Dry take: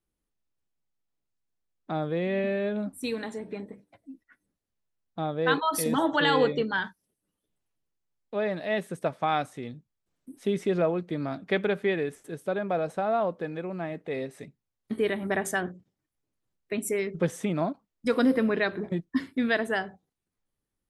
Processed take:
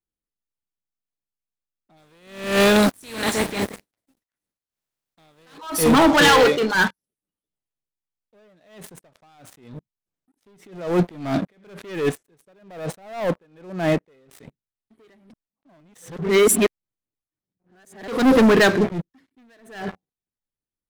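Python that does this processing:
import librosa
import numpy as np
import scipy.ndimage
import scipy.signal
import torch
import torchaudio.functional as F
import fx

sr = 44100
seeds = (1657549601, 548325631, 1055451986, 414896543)

y = fx.spec_flatten(x, sr, power=0.51, at=(1.96, 5.57), fade=0.02)
y = fx.weighting(y, sr, curve='A', at=(6.28, 6.75))
y = fx.over_compress(y, sr, threshold_db=-29.0, ratio=-0.5, at=(10.57, 11.63), fade=0.02)
y = fx.edit(y, sr, fx.reverse_span(start_s=15.3, length_s=2.78), tone=tone)
y = fx.leveller(y, sr, passes=5)
y = fx.attack_slew(y, sr, db_per_s=100.0)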